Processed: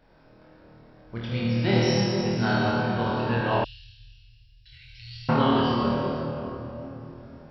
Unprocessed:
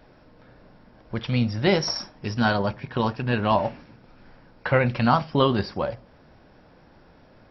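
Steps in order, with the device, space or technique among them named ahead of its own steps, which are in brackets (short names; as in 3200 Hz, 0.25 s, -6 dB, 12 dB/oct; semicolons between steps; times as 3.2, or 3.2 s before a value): tunnel (flutter echo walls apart 4.4 m, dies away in 0.56 s; reverb RT60 3.5 s, pre-delay 54 ms, DRR -3.5 dB); 3.64–5.29 inverse Chebyshev band-stop 200–1200 Hz, stop band 60 dB; gain -8.5 dB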